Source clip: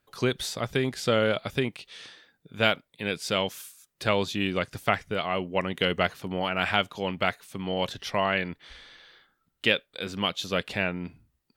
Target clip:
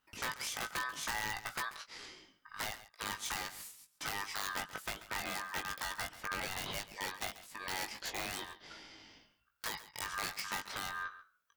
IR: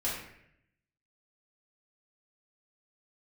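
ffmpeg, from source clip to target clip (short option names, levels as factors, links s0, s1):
-filter_complex "[0:a]asettb=1/sr,asplit=3[s0][s1][s2];[s0]atrim=end=6.404[s3];[s1]atrim=start=6.4:end=8.67,asetpts=PTS-STARTPTS,afade=t=in:d=0.004:c=qsin,afade=t=out:st=2.266:d=0.004:c=qsin,highpass=360[s4];[s2]atrim=start=8.666[s5];[s3][s4]acrossfade=d=0.004:c1=hsin:c2=qsin[s6];[s6][s5]acrossfade=d=0.004:c1=qsin:c2=hsin,acompressor=threshold=0.0355:ratio=16,aeval=exprs='(mod(18.8*val(0)+1,2)-1)/18.8':c=same,aeval=exprs='val(0)*sin(2*PI*1400*n/s)':c=same,asplit=2[s7][s8];[s8]adelay=19,volume=0.531[s9];[s7][s9]amix=inputs=2:normalize=0,aecho=1:1:137:0.168,volume=0.75"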